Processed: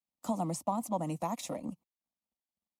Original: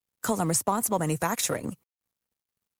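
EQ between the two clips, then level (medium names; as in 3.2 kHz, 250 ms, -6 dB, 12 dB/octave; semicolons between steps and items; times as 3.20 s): high-pass 48 Hz; low-pass 1.9 kHz 6 dB/octave; static phaser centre 420 Hz, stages 6; -3.5 dB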